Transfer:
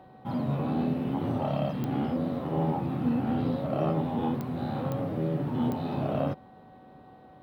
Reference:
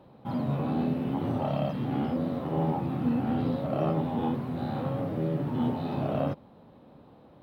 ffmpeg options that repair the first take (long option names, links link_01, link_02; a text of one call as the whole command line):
ffmpeg -i in.wav -af "adeclick=threshold=4,bandreject=frequency=377.6:width_type=h:width=4,bandreject=frequency=755.2:width_type=h:width=4,bandreject=frequency=1132.8:width_type=h:width=4,bandreject=frequency=1510.4:width_type=h:width=4,bandreject=frequency=1888:width_type=h:width=4,bandreject=frequency=750:width=30" out.wav